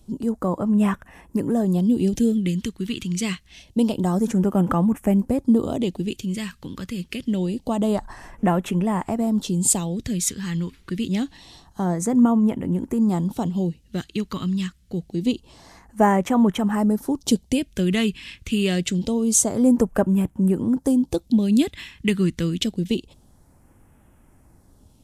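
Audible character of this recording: phasing stages 2, 0.26 Hz, lowest notch 680–4000 Hz

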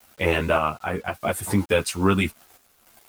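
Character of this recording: a quantiser's noise floor 8-bit, dither none; random-step tremolo 3.5 Hz; a shimmering, thickened sound

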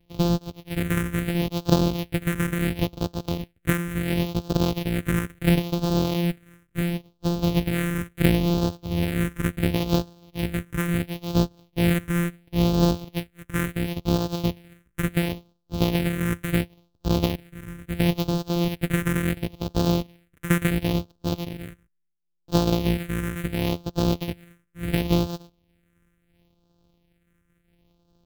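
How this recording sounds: a buzz of ramps at a fixed pitch in blocks of 256 samples; phasing stages 4, 0.72 Hz, lowest notch 750–2000 Hz; noise-modulated level

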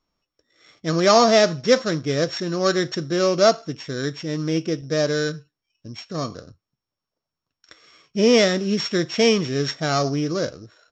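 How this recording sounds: a buzz of ramps at a fixed pitch in blocks of 8 samples; Vorbis

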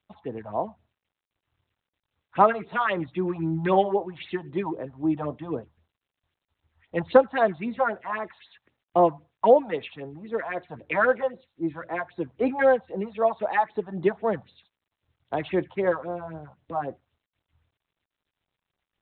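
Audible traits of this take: a quantiser's noise floor 12-bit, dither triangular; phasing stages 4, 3.8 Hz, lowest notch 340–2900 Hz; G.726

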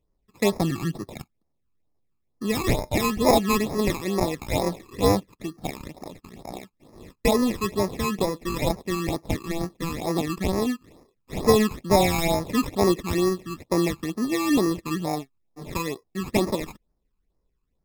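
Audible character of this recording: aliases and images of a low sample rate 1500 Hz, jitter 0%; phasing stages 12, 2.2 Hz, lowest notch 590–3100 Hz; MP3

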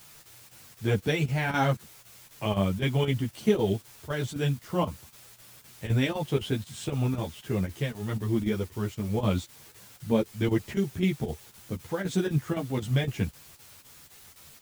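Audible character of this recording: a quantiser's noise floor 8-bit, dither triangular; chopped level 3.9 Hz, depth 65%, duty 85%; a shimmering, thickened sound

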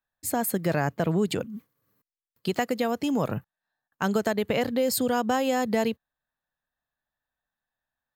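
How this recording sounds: noise floor -92 dBFS; spectral tilt -5.0 dB/oct

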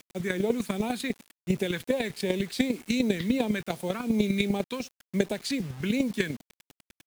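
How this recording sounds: chopped level 10 Hz, depth 60%, duty 10%; phasing stages 2, 2.7 Hz, lowest notch 700–1400 Hz; a quantiser's noise floor 10-bit, dither none

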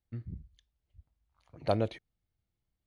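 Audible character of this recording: noise floor -86 dBFS; spectral tilt -6.5 dB/oct

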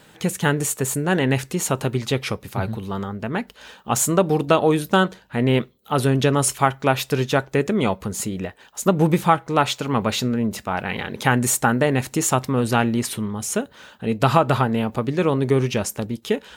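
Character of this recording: noise floor -52 dBFS; spectral tilt -5.0 dB/oct

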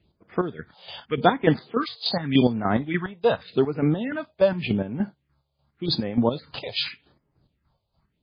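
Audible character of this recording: chopped level 3.4 Hz, depth 65%, duty 40%; phasing stages 4, 0.86 Hz, lowest notch 270–3900 Hz; MP3

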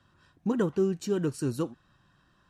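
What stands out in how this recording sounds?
noise floor -67 dBFS; spectral tilt -7.5 dB/oct

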